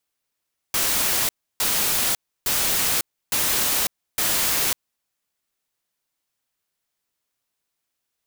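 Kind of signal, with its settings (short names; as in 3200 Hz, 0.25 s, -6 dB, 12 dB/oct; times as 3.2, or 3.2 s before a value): noise bursts white, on 0.55 s, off 0.31 s, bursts 5, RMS -21.5 dBFS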